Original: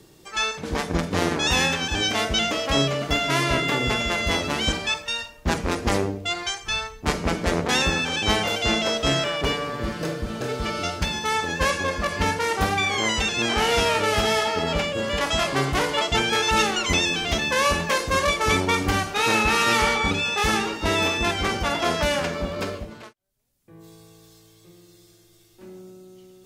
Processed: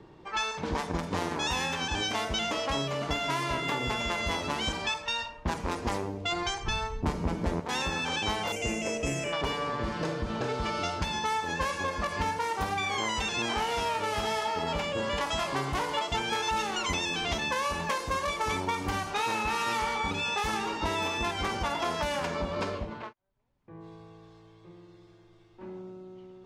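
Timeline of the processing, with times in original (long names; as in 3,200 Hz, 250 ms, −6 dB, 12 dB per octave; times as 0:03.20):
0:06.32–0:07.60: low-shelf EQ 480 Hz +12 dB
0:08.52–0:09.33: drawn EQ curve 510 Hz 0 dB, 880 Hz −12 dB, 1,400 Hz −13 dB, 2,600 Hz +2 dB, 3,700 Hz −21 dB, 6,800 Hz +5 dB
whole clip: parametric band 950 Hz +8.5 dB 0.45 octaves; low-pass that shuts in the quiet parts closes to 2,100 Hz, open at −18.5 dBFS; downward compressor 5 to 1, threshold −28 dBFS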